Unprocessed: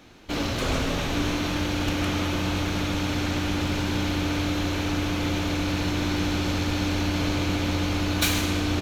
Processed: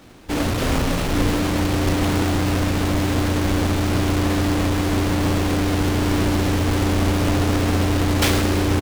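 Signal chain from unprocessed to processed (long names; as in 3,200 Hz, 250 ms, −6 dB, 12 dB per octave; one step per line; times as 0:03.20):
each half-wave held at its own peak
double-tracking delay 34 ms −10 dB
highs frequency-modulated by the lows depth 0.93 ms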